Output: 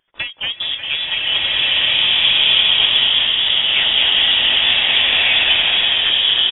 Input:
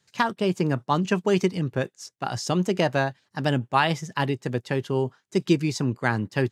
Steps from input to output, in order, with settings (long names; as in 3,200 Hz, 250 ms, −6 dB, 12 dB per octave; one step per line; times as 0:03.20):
samples sorted by size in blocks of 8 samples
voice inversion scrambler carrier 3,500 Hz
on a send: bouncing-ball delay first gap 230 ms, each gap 0.85×, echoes 5
on the sum: tape wow and flutter 73 cents
slow-attack reverb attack 1,560 ms, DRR −9 dB
level −1 dB